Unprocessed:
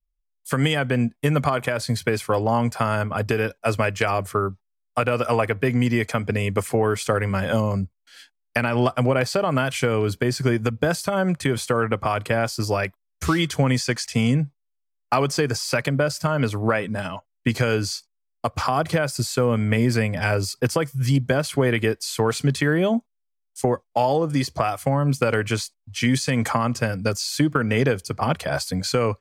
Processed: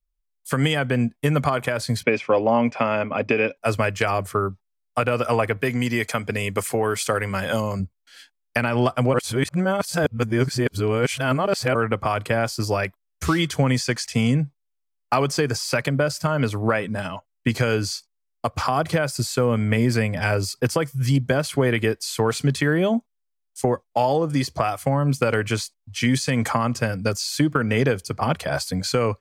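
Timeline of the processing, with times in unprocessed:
2.03–3.57 s: cabinet simulation 180–5200 Hz, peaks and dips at 260 Hz +7 dB, 560 Hz +6 dB, 1.5 kHz -4 dB, 2.4 kHz +10 dB, 4.3 kHz -10 dB
5.57–7.80 s: tilt EQ +1.5 dB/octave
9.14–11.75 s: reverse

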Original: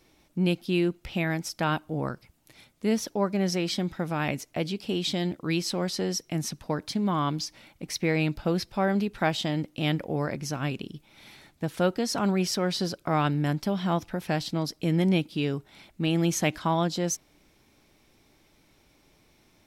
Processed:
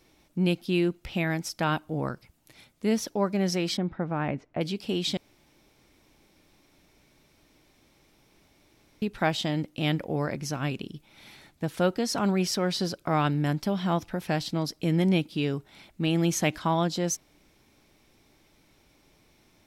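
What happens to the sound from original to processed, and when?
3.77–4.61 s: low-pass 1.6 kHz
5.17–9.02 s: room tone

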